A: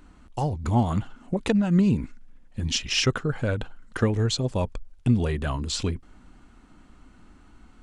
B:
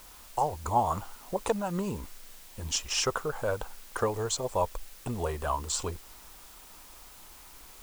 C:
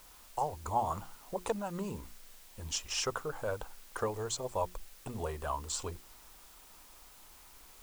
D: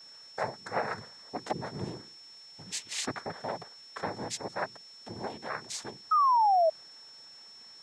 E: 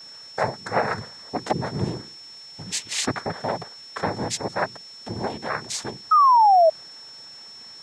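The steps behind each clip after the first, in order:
ten-band graphic EQ 125 Hz -10 dB, 250 Hz -10 dB, 500 Hz +4 dB, 1 kHz +11 dB, 2 kHz -7 dB, 4 kHz -5 dB, 8 kHz +9 dB; added noise white -48 dBFS; trim -4 dB
hum notches 60/120/180/240/300/360 Hz; trim -5.5 dB
noise-vocoded speech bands 6; painted sound fall, 6.11–6.70 s, 620–1300 Hz -23 dBFS; whistle 5.4 kHz -49 dBFS
bass shelf 160 Hz +6.5 dB; trim +8.5 dB

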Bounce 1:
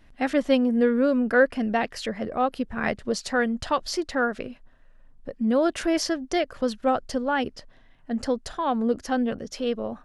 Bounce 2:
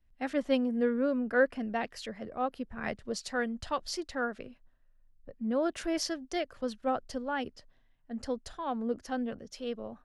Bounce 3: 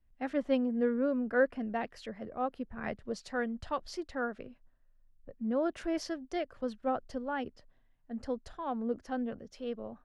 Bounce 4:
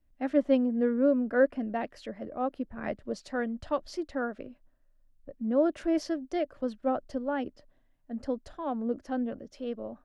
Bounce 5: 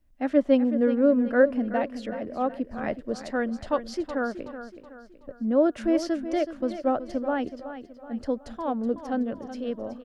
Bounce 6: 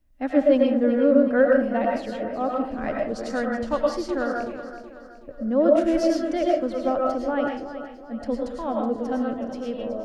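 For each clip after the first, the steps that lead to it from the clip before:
three bands expanded up and down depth 40%; trim -8.5 dB
treble shelf 3.2 kHz -11 dB; trim -1 dB
small resonant body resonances 300/580 Hz, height 8 dB, ringing for 30 ms
feedback delay 374 ms, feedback 43%, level -11.5 dB; trim +4 dB
reverberation RT60 0.45 s, pre-delay 70 ms, DRR -1 dB

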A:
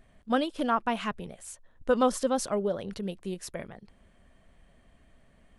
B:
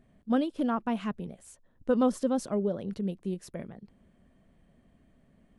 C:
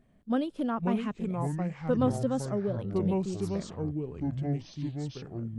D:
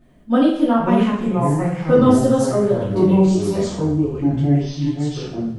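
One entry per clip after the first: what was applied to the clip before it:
peaking EQ 210 Hz +12 dB 2.6 oct; trim -8.5 dB
ever faster or slower copies 424 ms, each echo -5 st, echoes 3; trim -2 dB
two-slope reverb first 0.59 s, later 1.5 s, DRR -9 dB; trim +4 dB

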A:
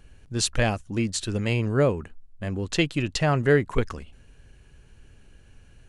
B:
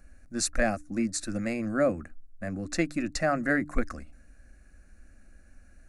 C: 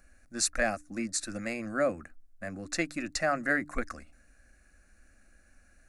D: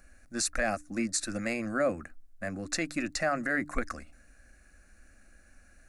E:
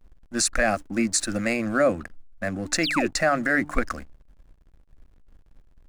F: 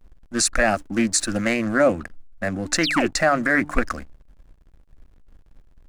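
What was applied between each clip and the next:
static phaser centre 630 Hz, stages 8; de-hum 148.5 Hz, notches 2
bass shelf 470 Hz -9.5 dB; trim +1 dB
peak limiter -21.5 dBFS, peak gain reduction 7.5 dB; trim +3 dB
painted sound fall, 2.83–3.08 s, 300–5800 Hz -34 dBFS; hysteresis with a dead band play -46.5 dBFS; trim +7.5 dB
loudspeaker Doppler distortion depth 0.18 ms; trim +3 dB

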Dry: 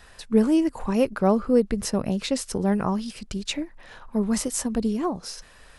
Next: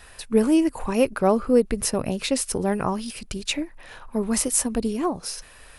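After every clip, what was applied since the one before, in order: graphic EQ with 31 bands 200 Hz -6 dB, 2.5 kHz +4 dB, 10 kHz +10 dB; trim +2 dB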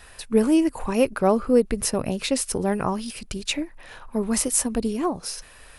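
no audible change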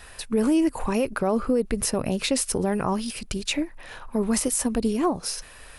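peak limiter -16 dBFS, peak gain reduction 9.5 dB; trim +2 dB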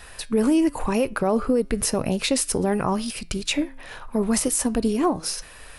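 flange 0.93 Hz, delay 5.7 ms, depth 1.9 ms, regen +90%; trim +6.5 dB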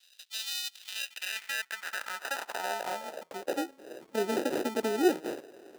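sample-and-hold 40×; high-pass sweep 3.6 kHz -> 360 Hz, 0.74–3.81 s; trim -9 dB

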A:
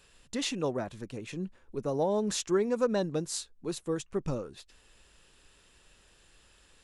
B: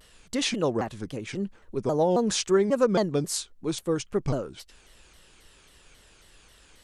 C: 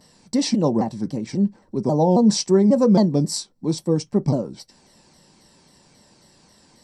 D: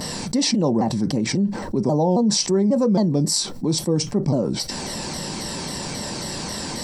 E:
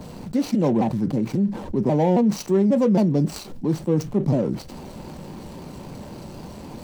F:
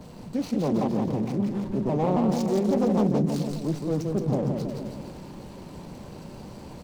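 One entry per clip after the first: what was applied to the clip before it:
vibrato with a chosen wave saw down 3.7 Hz, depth 250 cents; trim +5.5 dB
dynamic bell 1.5 kHz, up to -5 dB, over -45 dBFS, Q 1.8; reverberation, pre-delay 3 ms, DRR 9 dB; trim -2 dB
level flattener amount 70%; trim -5 dB
median filter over 25 samples; three bands expanded up and down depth 40%
bouncing-ball echo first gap 170 ms, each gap 0.9×, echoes 5; loudspeaker Doppler distortion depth 0.43 ms; trim -6 dB

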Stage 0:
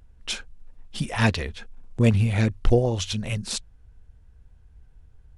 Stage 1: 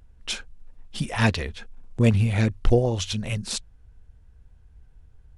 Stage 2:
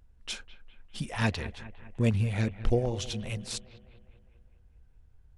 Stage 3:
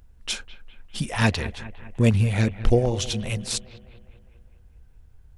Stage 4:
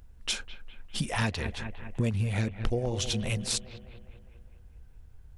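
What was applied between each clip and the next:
no audible change
bucket-brigade echo 203 ms, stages 4096, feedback 57%, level -15.5 dB; trim -7 dB
treble shelf 7.3 kHz +5 dB; trim +7 dB
compression 4:1, threshold -26 dBFS, peak gain reduction 12.5 dB

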